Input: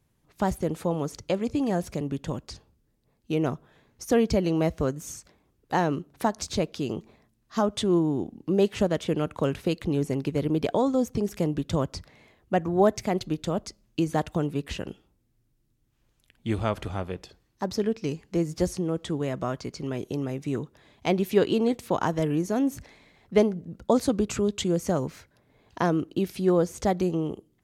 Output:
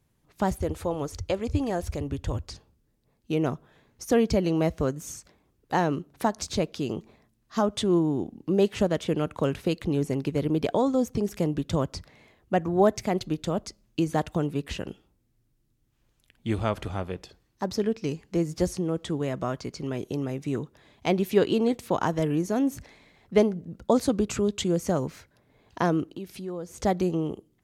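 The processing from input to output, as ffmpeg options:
-filter_complex "[0:a]asettb=1/sr,asplit=3[s0][s1][s2];[s0]atrim=end=0.604[s3];[s1]atrim=start=0.6:end=2.5,asetpts=PTS-STARTPTS,afade=t=in:d=0.004:c=qsin,afade=t=out:st=1.896:d=0.004:c=qsin,lowshelf=f=120:t=q:w=3:g=11[s4];[s2]atrim=start=2.496[s5];[s3][s4]acrossfade=d=0.004:c1=hsin:c2=qsin[s6];[s6][s5]acrossfade=d=0.004:c1=qsin:c2=hsin,asettb=1/sr,asplit=3[s7][s8][s9];[s7]atrim=end=26.054[s10];[s8]atrim=start=26.05:end=26.8,asetpts=PTS-STARTPTS,afade=t=in:d=0.004:c=qsin,afade=t=out:st=0.746:d=0.004:c=qsin,acompressor=threshold=0.00794:ratio=2:attack=3.2:release=140:knee=1:detection=peak[s11];[s9]atrim=start=26.796[s12];[s10][s11]acrossfade=d=0.004:c1=hsin:c2=qsin[s13];[s13][s12]acrossfade=d=0.004:c1=qsin:c2=hsin"

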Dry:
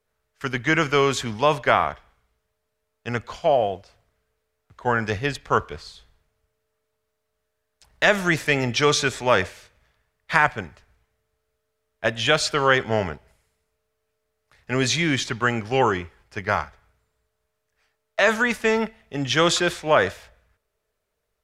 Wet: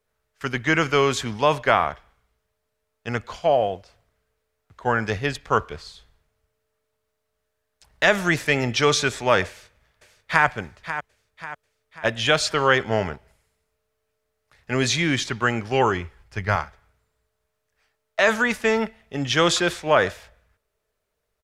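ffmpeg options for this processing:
-filter_complex "[0:a]asplit=2[s0][s1];[s1]afade=t=in:st=9.47:d=0.01,afade=t=out:st=10.46:d=0.01,aecho=0:1:540|1080|1620|2160|2700:0.281838|0.140919|0.0704596|0.0352298|0.0176149[s2];[s0][s2]amix=inputs=2:normalize=0,asettb=1/sr,asplit=3[s3][s4][s5];[s3]atrim=end=15.794[s6];[s4]atrim=start=15.79:end=16.56,asetpts=PTS-STARTPTS,afade=t=in:d=0.004:c=qsin,afade=t=out:st=0.766:d=0.004:c=qsin,asubboost=boost=11.5:cutoff=150[s7];[s5]atrim=start=16.556[s8];[s6][s7]acrossfade=d=0.004:c1=hsin:c2=qsin[s9];[s9][s8]acrossfade=d=0.004:c1=qsin:c2=hsin"

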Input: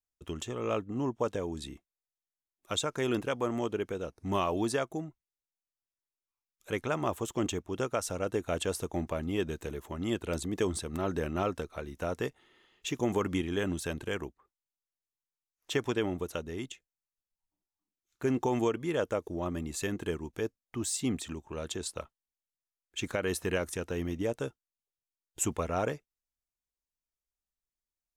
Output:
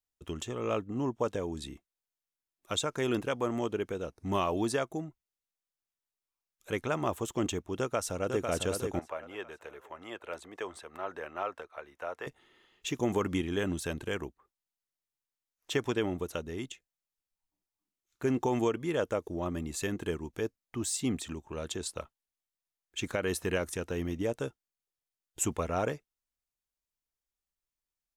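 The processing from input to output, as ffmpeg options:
-filter_complex "[0:a]asplit=2[s0][s1];[s1]afade=t=in:st=7.79:d=0.01,afade=t=out:st=8.41:d=0.01,aecho=0:1:500|1000|1500|2000|2500:0.562341|0.224937|0.0899746|0.0359898|0.0143959[s2];[s0][s2]amix=inputs=2:normalize=0,asettb=1/sr,asplit=3[s3][s4][s5];[s3]atrim=end=8.994[s6];[s4]atrim=start=8.99:end=12.27,asetpts=PTS-STARTPTS,afade=t=in:d=0.004:c=qsin,afade=t=out:st=3.276:d=0.004:c=qsin,acrossover=split=520 2600:gain=0.0708 1 0.2[s7][s8][s9];[s7][s8][s9]amix=inputs=3:normalize=0[s10];[s5]atrim=start=12.266[s11];[s6][s10]acrossfade=d=0.004:c1=hsin:c2=qsin[s12];[s12][s11]acrossfade=d=0.004:c1=qsin:c2=hsin"

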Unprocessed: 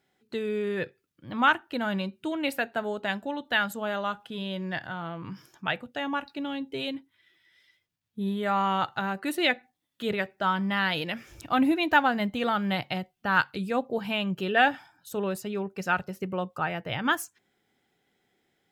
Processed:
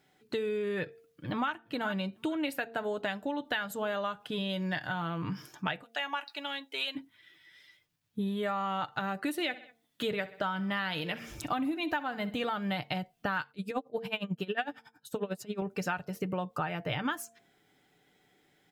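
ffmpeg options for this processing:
-filter_complex "[0:a]asplit=2[s0][s1];[s1]afade=t=in:st=0.82:d=0.01,afade=t=out:st=1.5:d=0.01,aecho=0:1:420|840:0.133352|0.0200028[s2];[s0][s2]amix=inputs=2:normalize=0,asettb=1/sr,asplit=3[s3][s4][s5];[s3]atrim=end=4.494[s6];[s4]atrim=start=4.49:end=5.24,asetpts=PTS-STARTPTS,afade=t=in:d=0.004:c=qsin,afade=t=out:st=0.746:d=0.004:c=qsin,equalizer=f=11000:t=o:w=2.3:g=6[s7];[s5]atrim=start=5.236[s8];[s6][s7]acrossfade=d=0.004:c1=hsin:c2=qsin[s9];[s9][s8]acrossfade=d=0.004:c1=qsin:c2=hsin,asplit=3[s10][s11][s12];[s10]afade=t=out:st=5.82:d=0.02[s13];[s11]highpass=920,afade=t=in:st=5.82:d=0.02,afade=t=out:st=6.95:d=0.02[s14];[s12]afade=t=in:st=6.95:d=0.02[s15];[s13][s14][s15]amix=inputs=3:normalize=0,asplit=3[s16][s17][s18];[s16]afade=t=out:st=9.36:d=0.02[s19];[s17]aecho=1:1:64|128|192:0.119|0.0499|0.021,afade=t=in:st=9.36:d=0.02,afade=t=out:st=12.49:d=0.02[s20];[s18]afade=t=in:st=12.49:d=0.02[s21];[s19][s20][s21]amix=inputs=3:normalize=0,asettb=1/sr,asplit=3[s22][s23][s24];[s22]atrim=end=13.514[s25];[s23]atrim=start=13.51:end=15.62,asetpts=PTS-STARTPTS,afade=t=in:d=0.004:c=qsin,afade=t=out:st=2.106:d=0.004:c=qsin,aeval=exprs='val(0)*pow(10,-24*(0.5-0.5*cos(2*PI*11*n/s))/20)':c=same[s26];[s24]atrim=start=15.616[s27];[s25][s26]acrossfade=d=0.004:c1=hsin:c2=qsin[s28];[s28][s27]acrossfade=d=0.004:c1=qsin:c2=hsin,aecho=1:1:6.7:0.36,bandreject=f=228.7:t=h:w=4,bandreject=f=457.4:t=h:w=4,bandreject=f=686.1:t=h:w=4,acompressor=threshold=0.02:ratio=10,volume=1.68"

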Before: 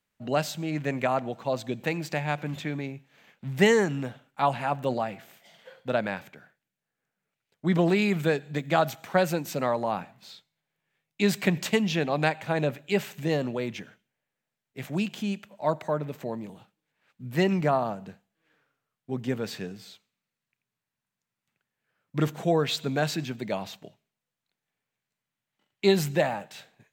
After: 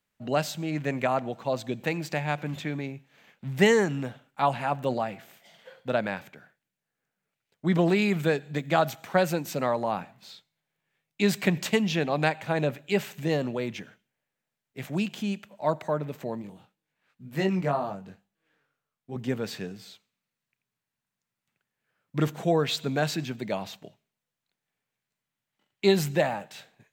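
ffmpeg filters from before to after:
-filter_complex "[0:a]asettb=1/sr,asplit=3[s0][s1][s2];[s0]atrim=end=16.424[s3];[s1]atrim=start=16.42:end=19.16,asetpts=PTS-STARTPTS,afade=t=in:d=0.004:c=qsin,afade=t=out:st=2.736:d=0.004:c=qsin,flanger=delay=20:depth=2:speed=2.1[s4];[s2]atrim=start=19.156[s5];[s3][s4]acrossfade=d=0.004:c1=hsin:c2=qsin[s6];[s6][s5]acrossfade=d=0.004:c1=qsin:c2=hsin"

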